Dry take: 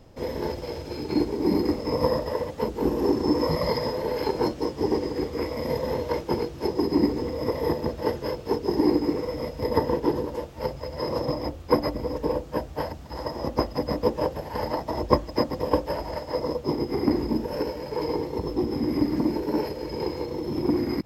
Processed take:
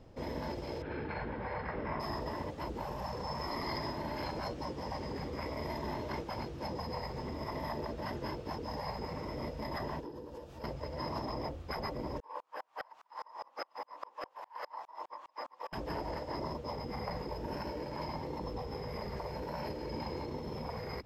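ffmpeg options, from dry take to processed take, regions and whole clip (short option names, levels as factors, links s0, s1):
-filter_complex "[0:a]asettb=1/sr,asplit=3[s0][s1][s2];[s0]atrim=end=0.824[s3];[s1]atrim=start=0.82:end=2,asetpts=PTS-STARTPTS,afade=t=in:d=0.004:c=qsin,afade=t=out:st=1.176:d=0.004:c=qsin,lowpass=f=3200:w=0.5412,lowpass=f=3200:w=1.3066,equalizer=f=1600:w=2.5:g=12.5[s4];[s2]atrim=start=1.996[s5];[s3][s4]acrossfade=d=0.004:c1=hsin:c2=qsin[s6];[s6][s5]acrossfade=d=0.004:c1=qsin:c2=hsin,asettb=1/sr,asplit=3[s7][s8][s9];[s7]atrim=end=10.004[s10];[s8]atrim=start=10:end=10.64,asetpts=PTS-STARTPTS,afade=t=in:d=0.004:c=qsin,afade=t=out:st=0.636:d=0.004:c=qsin,highshelf=f=4200:g=6,bandreject=f=2100:w=8,acompressor=threshold=0.01:ratio=4:attack=3.2:release=140:knee=1:detection=peak[s11];[s9]atrim=start=10.636[s12];[s10][s11]acrossfade=d=0.004:c1=hsin:c2=qsin[s13];[s13][s12]acrossfade=d=0.004:c1=qsin:c2=hsin,asettb=1/sr,asplit=3[s14][s15][s16];[s14]atrim=end=12.204[s17];[s15]atrim=start=12.2:end=15.73,asetpts=PTS-STARTPTS,afade=t=in:d=0.004:c=qsin,afade=t=out:st=3.526:d=0.004:c=qsin,highpass=f=1000:t=q:w=4.8,equalizer=f=2500:w=1.5:g=2.5,aeval=exprs='val(0)*pow(10,-37*if(lt(mod(-4.9*n/s,1),2*abs(-4.9)/1000),1-mod(-4.9*n/s,1)/(2*abs(-4.9)/1000),(mod(-4.9*n/s,1)-2*abs(-4.9)/1000)/(1-2*abs(-4.9)/1000))/20)':c=same[s18];[s16]atrim=start=15.726[s19];[s17][s18]acrossfade=d=0.004:c1=hsin:c2=qsin[s20];[s20][s19]acrossfade=d=0.004:c1=qsin:c2=hsin,lowpass=f=3900:p=1,afftfilt=real='re*lt(hypot(re,im),0.178)':imag='im*lt(hypot(re,im),0.178)':win_size=1024:overlap=0.75,volume=0.596"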